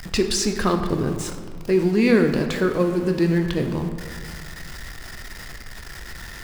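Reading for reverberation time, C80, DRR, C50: 1.7 s, 8.5 dB, 5.0 dB, 7.5 dB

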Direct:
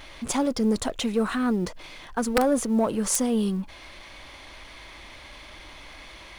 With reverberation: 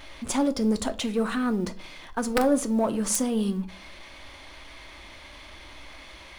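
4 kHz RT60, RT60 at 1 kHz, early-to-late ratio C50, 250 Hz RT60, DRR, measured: 0.35 s, 0.35 s, 19.0 dB, 0.55 s, 10.0 dB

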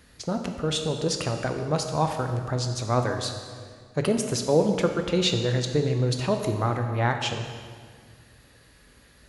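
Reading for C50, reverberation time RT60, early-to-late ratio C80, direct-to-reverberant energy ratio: 6.5 dB, 1.9 s, 7.5 dB, 4.5 dB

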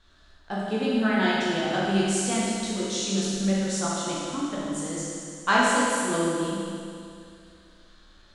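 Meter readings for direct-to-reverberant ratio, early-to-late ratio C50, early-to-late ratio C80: −7.5 dB, −3.5 dB, −1.0 dB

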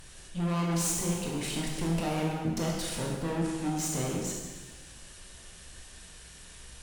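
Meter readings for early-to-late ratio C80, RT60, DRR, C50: 3.0 dB, 1.4 s, −2.5 dB, 1.0 dB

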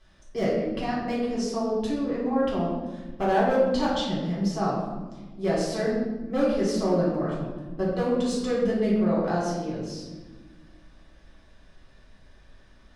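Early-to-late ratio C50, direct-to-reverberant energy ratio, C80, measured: 0.5 dB, −7.0 dB, 3.0 dB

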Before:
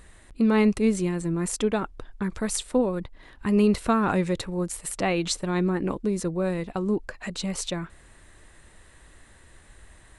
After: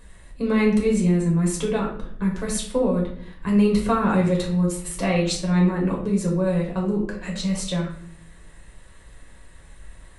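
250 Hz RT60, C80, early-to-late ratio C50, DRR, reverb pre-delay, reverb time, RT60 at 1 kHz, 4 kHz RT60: 0.90 s, 9.5 dB, 6.0 dB, −2.0 dB, 6 ms, 0.60 s, 0.55 s, 0.45 s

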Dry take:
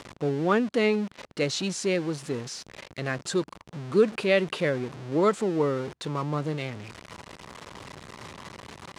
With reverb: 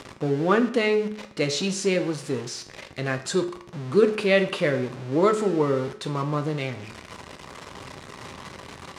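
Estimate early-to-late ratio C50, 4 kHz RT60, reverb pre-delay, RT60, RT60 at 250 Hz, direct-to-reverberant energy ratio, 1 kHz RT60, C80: 12.5 dB, 0.50 s, 5 ms, 0.60 s, 0.55 s, 6.5 dB, 0.55 s, 15.5 dB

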